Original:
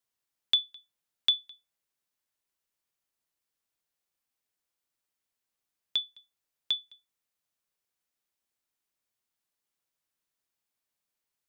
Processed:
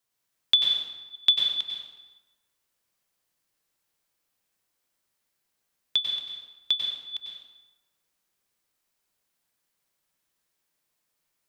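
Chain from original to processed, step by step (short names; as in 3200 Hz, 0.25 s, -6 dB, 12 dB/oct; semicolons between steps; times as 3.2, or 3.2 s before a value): reverse delay 0.289 s, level -10 dB; plate-style reverb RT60 1.1 s, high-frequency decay 0.7×, pre-delay 85 ms, DRR -1 dB; gain +4.5 dB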